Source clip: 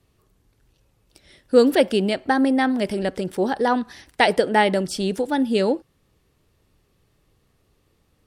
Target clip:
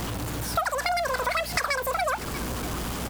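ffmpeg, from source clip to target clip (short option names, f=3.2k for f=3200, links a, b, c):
-filter_complex "[0:a]aeval=exprs='val(0)+0.5*0.0596*sgn(val(0))':c=same,asetrate=117747,aresample=44100,aeval=exprs='val(0)+0.02*(sin(2*PI*60*n/s)+sin(2*PI*2*60*n/s)/2+sin(2*PI*3*60*n/s)/3+sin(2*PI*4*60*n/s)/4+sin(2*PI*5*60*n/s)/5)':c=same,asplit=2[a][b];[b]aecho=0:1:638:0.0794[c];[a][c]amix=inputs=2:normalize=0,acompressor=threshold=-22dB:ratio=6,volume=-1.5dB"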